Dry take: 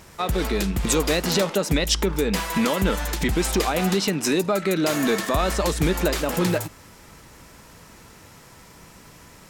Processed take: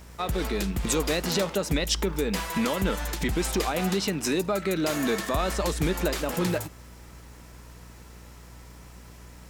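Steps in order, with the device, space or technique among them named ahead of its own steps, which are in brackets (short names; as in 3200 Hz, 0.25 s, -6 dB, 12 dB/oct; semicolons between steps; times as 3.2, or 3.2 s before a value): video cassette with head-switching buzz (buzz 60 Hz, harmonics 32, -43 dBFS -8 dB/oct; white noise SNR 39 dB); gain -4.5 dB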